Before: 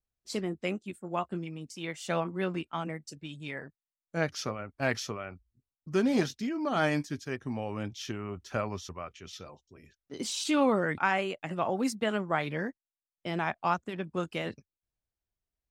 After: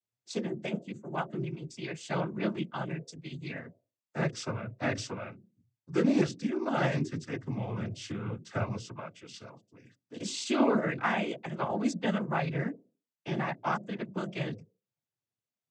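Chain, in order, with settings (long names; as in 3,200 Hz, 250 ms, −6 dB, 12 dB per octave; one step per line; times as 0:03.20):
low-shelf EQ 210 Hz +9 dB
mains-hum notches 60/120/180/240/300/360/420/480/540 Hz
cochlear-implant simulation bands 16
level −2 dB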